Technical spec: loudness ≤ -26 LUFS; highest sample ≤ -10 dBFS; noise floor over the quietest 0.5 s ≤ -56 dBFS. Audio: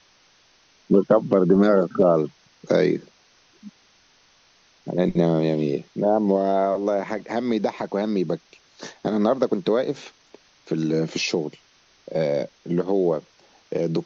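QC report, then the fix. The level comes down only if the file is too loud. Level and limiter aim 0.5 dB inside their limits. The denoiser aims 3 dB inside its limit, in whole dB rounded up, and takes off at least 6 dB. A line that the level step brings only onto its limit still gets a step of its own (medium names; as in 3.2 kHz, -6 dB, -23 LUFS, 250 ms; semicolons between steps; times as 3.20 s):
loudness -22.5 LUFS: fail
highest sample -4.5 dBFS: fail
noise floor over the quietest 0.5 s -58 dBFS: pass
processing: trim -4 dB; peak limiter -10.5 dBFS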